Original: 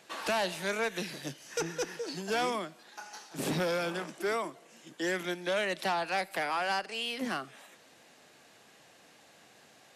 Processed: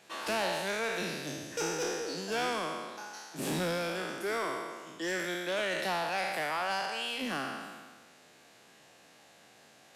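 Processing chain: spectral sustain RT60 1.50 s; in parallel at -6 dB: hard clipper -29.5 dBFS, distortion -10 dB; on the sum: trim -6.5 dB

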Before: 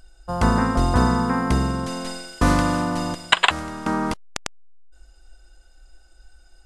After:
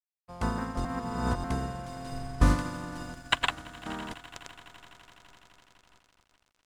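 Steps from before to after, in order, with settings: echo with a slow build-up 84 ms, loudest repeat 8, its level -16.5 dB; crossover distortion -37 dBFS; 0.85–1.44 s: reverse; 2.12–2.55 s: bass shelf 97 Hz +11 dB; upward expansion 1.5:1, over -33 dBFS; trim -7 dB

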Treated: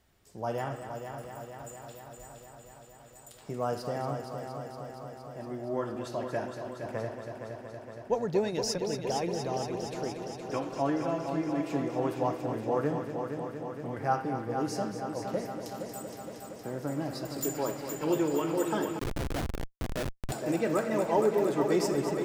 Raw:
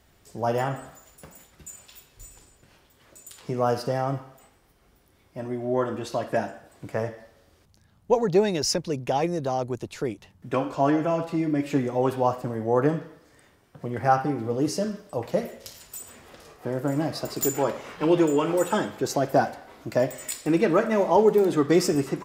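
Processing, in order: multi-head delay 233 ms, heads first and second, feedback 74%, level -10 dB; 18.99–20.32 s: Schmitt trigger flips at -18 dBFS; trim -8 dB

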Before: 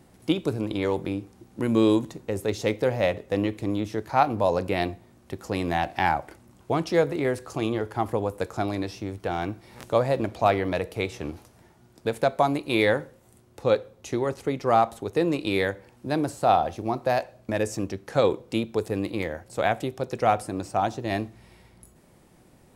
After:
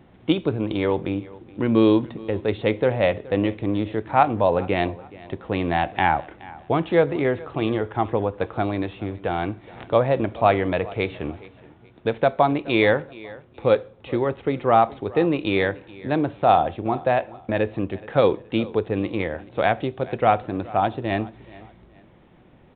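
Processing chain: on a send: feedback delay 423 ms, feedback 31%, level -20.5 dB; on the sum: resampled via 8 kHz; trim +3.5 dB

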